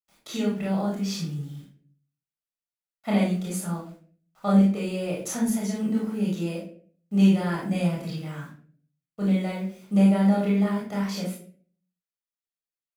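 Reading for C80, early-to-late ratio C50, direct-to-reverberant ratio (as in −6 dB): 9.0 dB, 3.0 dB, −4.5 dB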